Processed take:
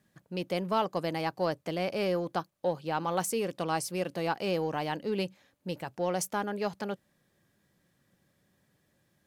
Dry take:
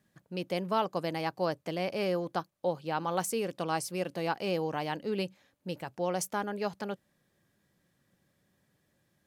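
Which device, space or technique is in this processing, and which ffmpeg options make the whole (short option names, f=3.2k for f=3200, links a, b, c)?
parallel distortion: -filter_complex "[0:a]asplit=2[a][b];[b]asoftclip=type=hard:threshold=-32dB,volume=-13dB[c];[a][c]amix=inputs=2:normalize=0"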